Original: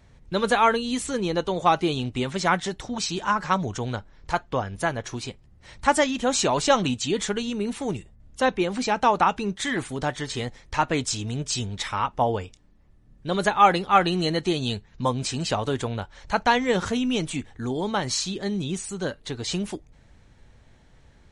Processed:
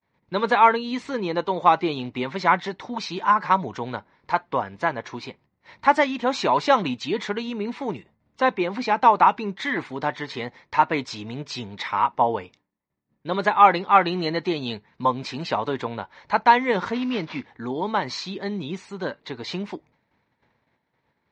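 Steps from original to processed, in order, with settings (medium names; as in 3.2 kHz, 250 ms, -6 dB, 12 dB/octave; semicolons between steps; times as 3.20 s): 16.94–17.47 s: CVSD coder 32 kbps; expander -44 dBFS; cabinet simulation 180–4500 Hz, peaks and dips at 970 Hz +8 dB, 2.1 kHz +5 dB, 3.1 kHz -5 dB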